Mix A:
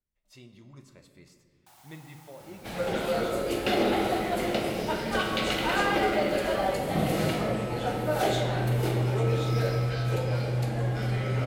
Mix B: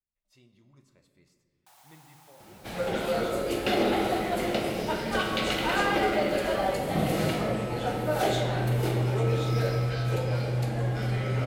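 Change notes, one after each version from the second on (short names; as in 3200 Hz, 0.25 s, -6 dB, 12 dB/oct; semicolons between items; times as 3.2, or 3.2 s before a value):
speech -9.5 dB; first sound: send off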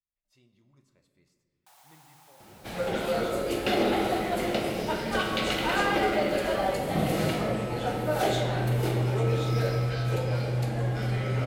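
speech -4.0 dB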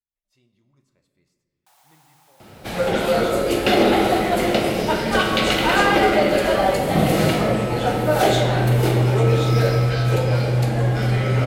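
second sound +9.0 dB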